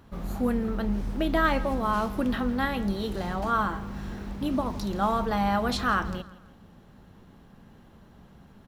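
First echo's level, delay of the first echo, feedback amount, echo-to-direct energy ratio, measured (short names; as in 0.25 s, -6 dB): -19.0 dB, 0.166 s, 38%, -18.5 dB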